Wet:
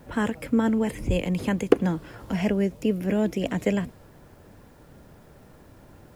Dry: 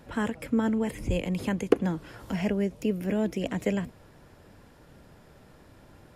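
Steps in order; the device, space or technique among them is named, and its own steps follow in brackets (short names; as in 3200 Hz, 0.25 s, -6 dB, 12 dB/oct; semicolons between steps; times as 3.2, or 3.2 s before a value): plain cassette with noise reduction switched in (mismatched tape noise reduction decoder only; wow and flutter 20 cents; white noise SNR 40 dB); gain +3.5 dB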